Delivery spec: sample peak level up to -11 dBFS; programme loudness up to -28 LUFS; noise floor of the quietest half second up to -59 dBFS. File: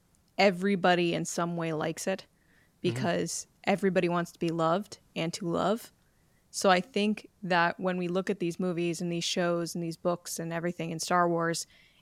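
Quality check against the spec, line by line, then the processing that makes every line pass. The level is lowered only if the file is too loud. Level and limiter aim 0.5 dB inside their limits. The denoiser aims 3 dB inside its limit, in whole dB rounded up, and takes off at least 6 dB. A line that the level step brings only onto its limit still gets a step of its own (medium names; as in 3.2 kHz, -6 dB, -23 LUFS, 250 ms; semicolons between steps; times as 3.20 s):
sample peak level -10.0 dBFS: fail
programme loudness -29.5 LUFS: pass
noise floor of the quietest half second -66 dBFS: pass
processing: peak limiter -11.5 dBFS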